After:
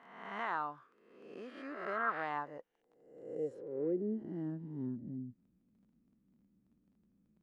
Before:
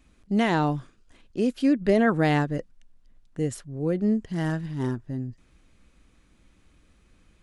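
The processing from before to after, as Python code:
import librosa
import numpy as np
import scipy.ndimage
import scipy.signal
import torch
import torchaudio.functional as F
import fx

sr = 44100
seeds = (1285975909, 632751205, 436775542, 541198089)

y = fx.spec_swells(x, sr, rise_s=0.99)
y = fx.dmg_crackle(y, sr, seeds[0], per_s=20.0, level_db=-32.0)
y = fx.filter_sweep_bandpass(y, sr, from_hz=1200.0, to_hz=210.0, start_s=2.17, end_s=4.84, q=3.5)
y = y * librosa.db_to_amplitude(-4.5)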